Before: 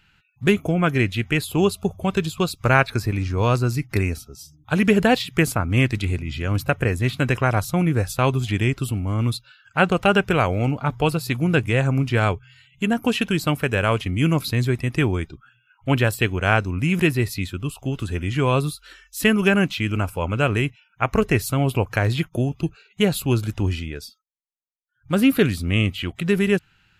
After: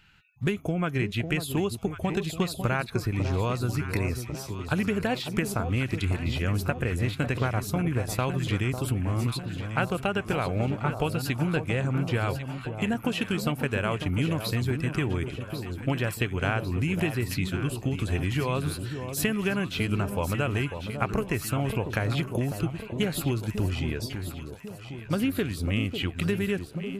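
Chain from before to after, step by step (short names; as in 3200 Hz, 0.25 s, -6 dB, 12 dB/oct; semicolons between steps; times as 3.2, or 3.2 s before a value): compressor, threshold -24 dBFS, peak gain reduction 13 dB; echo with dull and thin repeats by turns 0.548 s, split 1000 Hz, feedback 73%, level -7.5 dB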